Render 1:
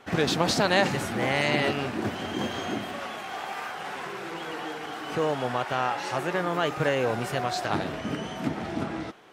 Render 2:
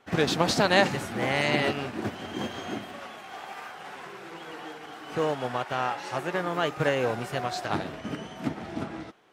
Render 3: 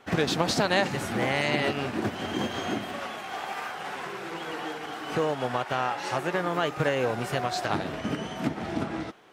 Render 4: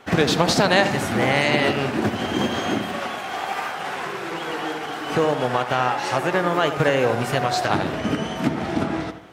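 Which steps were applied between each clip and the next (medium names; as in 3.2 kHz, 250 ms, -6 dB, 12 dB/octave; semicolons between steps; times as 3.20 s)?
upward expansion 1.5:1, over -40 dBFS; trim +2 dB
compression 2:1, threshold -33 dBFS, peak gain reduction 10 dB; trim +6 dB
filtered feedback delay 79 ms, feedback 46%, low-pass 2.3 kHz, level -9.5 dB; trim +6.5 dB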